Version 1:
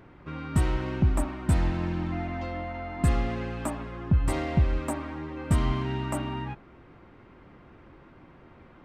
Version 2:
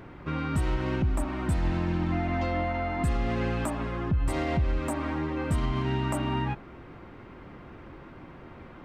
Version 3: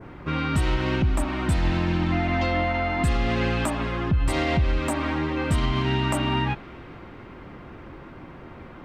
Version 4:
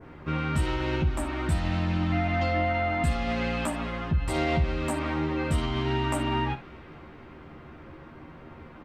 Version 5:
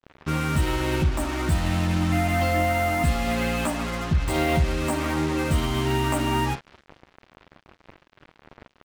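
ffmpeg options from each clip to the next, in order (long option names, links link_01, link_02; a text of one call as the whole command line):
ffmpeg -i in.wav -af "alimiter=level_in=1dB:limit=-24dB:level=0:latency=1:release=175,volume=-1dB,volume=6dB" out.wav
ffmpeg -i in.wav -af "adynamicequalizer=threshold=0.00224:dfrequency=3500:dqfactor=0.73:tfrequency=3500:tqfactor=0.73:attack=5:release=100:ratio=0.375:range=3.5:mode=boostabove:tftype=bell,volume=4dB" out.wav
ffmpeg -i in.wav -af "aecho=1:1:13|59:0.596|0.224,volume=-5.5dB" out.wav
ffmpeg -i in.wav -af "acrusher=bits=5:mix=0:aa=0.5,volume=3.5dB" out.wav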